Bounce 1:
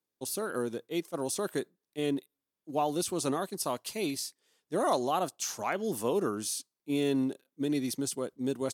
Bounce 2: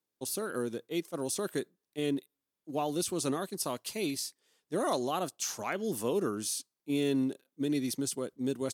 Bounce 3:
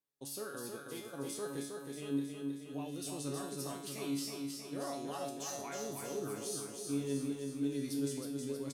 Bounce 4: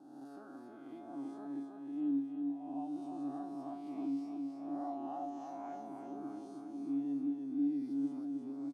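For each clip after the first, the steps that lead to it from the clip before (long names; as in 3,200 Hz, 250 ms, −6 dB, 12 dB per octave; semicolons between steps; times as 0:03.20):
dynamic equaliser 830 Hz, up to −5 dB, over −43 dBFS, Q 1.2
brickwall limiter −26.5 dBFS, peak gain reduction 8.5 dB; tuned comb filter 140 Hz, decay 0.58 s, harmonics all, mix 90%; on a send: repeating echo 317 ms, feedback 60%, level −4.5 dB; on the sum: level +6.5 dB
peak hold with a rise ahead of every peak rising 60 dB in 1.24 s; tape wow and flutter 26 cents; pair of resonant band-passes 470 Hz, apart 1.3 octaves; level +3.5 dB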